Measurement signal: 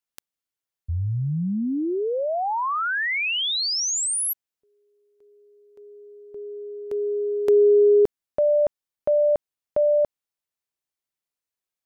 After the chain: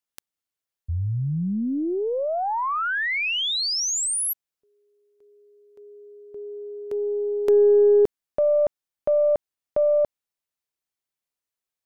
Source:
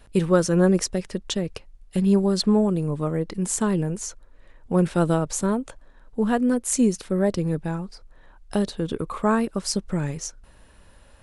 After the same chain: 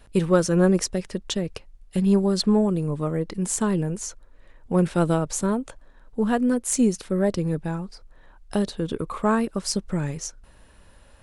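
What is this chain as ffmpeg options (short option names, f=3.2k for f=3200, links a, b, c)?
-af "aeval=exprs='0.531*(cos(1*acos(clip(val(0)/0.531,-1,1)))-cos(1*PI/2))+0.00596*(cos(3*acos(clip(val(0)/0.531,-1,1)))-cos(3*PI/2))+0.00668*(cos(6*acos(clip(val(0)/0.531,-1,1)))-cos(6*PI/2))':c=same"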